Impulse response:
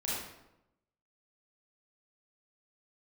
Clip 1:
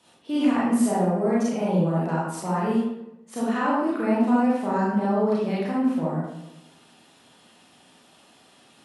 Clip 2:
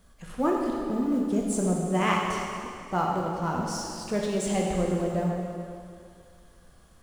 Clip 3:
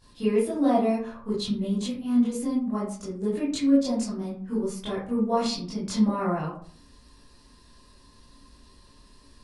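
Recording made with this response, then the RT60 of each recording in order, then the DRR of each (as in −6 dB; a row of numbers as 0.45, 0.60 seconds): 1; 0.90, 2.3, 0.50 seconds; −8.0, −2.0, −11.5 decibels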